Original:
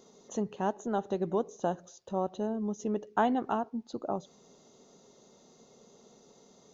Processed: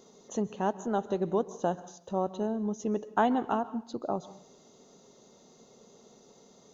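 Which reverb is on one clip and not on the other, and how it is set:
dense smooth reverb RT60 0.57 s, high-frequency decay 0.95×, pre-delay 120 ms, DRR 17 dB
level +1.5 dB

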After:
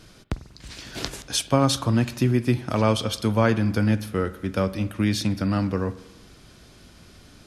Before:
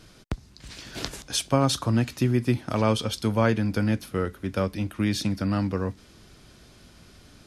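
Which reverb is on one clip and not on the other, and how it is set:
spring reverb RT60 1 s, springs 47 ms, chirp 80 ms, DRR 14.5 dB
level +2 dB

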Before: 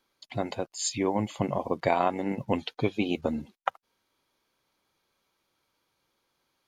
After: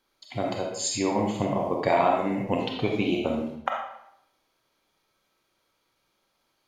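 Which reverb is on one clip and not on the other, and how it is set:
comb and all-pass reverb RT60 0.74 s, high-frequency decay 0.85×, pre-delay 5 ms, DRR −0.5 dB

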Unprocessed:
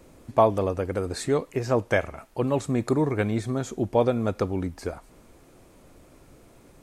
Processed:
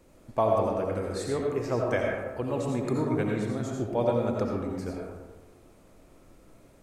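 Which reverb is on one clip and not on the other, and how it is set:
comb and all-pass reverb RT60 1.3 s, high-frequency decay 0.4×, pre-delay 45 ms, DRR −1 dB
level −7 dB

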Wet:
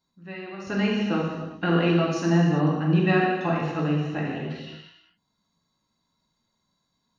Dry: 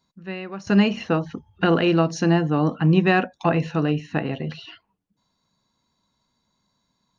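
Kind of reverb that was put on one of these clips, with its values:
reverb whose tail is shaped and stops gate 430 ms falling, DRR −4 dB
level −8.5 dB

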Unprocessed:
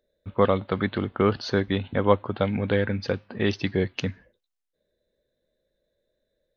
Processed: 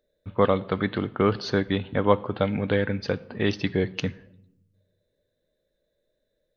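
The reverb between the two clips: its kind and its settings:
rectangular room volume 2,900 cubic metres, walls furnished, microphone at 0.44 metres

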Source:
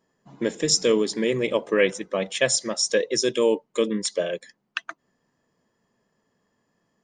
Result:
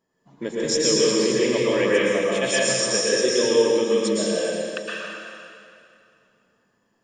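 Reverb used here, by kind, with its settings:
dense smooth reverb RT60 2.5 s, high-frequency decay 0.9×, pre-delay 100 ms, DRR −7 dB
level −5 dB

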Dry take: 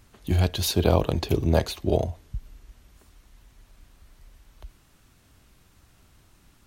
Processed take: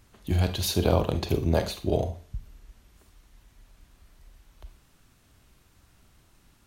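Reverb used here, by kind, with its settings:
four-comb reverb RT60 0.36 s, combs from 32 ms, DRR 9 dB
level −2.5 dB

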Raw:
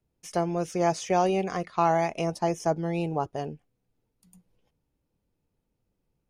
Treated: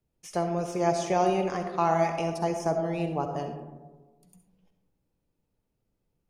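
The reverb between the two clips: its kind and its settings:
comb and all-pass reverb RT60 1.3 s, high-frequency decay 0.3×, pre-delay 25 ms, DRR 5 dB
level −2 dB

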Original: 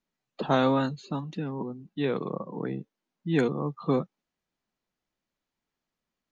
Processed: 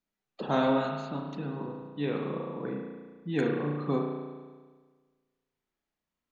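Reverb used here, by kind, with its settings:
spring reverb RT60 1.5 s, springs 34 ms, chirp 70 ms, DRR 0 dB
level −5 dB

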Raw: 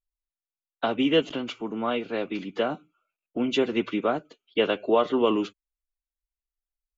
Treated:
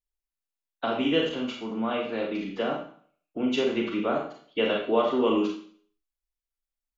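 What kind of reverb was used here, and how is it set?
four-comb reverb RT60 0.51 s, combs from 28 ms, DRR 0 dB
level −4 dB

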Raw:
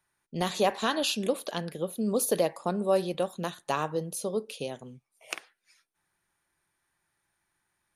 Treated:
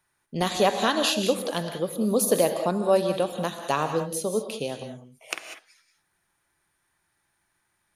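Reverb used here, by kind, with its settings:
reverb whose tail is shaped and stops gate 220 ms rising, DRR 7 dB
level +4 dB

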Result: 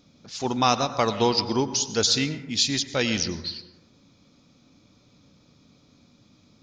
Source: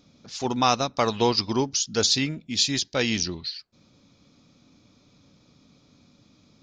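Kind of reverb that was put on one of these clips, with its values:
dense smooth reverb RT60 1.1 s, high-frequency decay 0.35×, pre-delay 85 ms, DRR 11.5 dB

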